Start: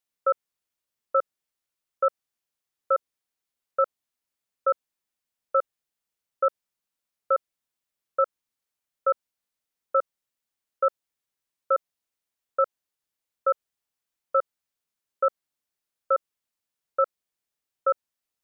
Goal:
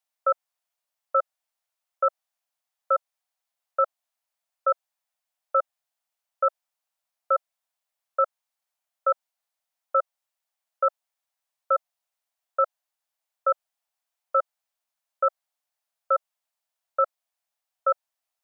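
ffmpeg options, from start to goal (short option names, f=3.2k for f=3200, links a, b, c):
-af "lowshelf=f=500:t=q:w=3:g=-10.5"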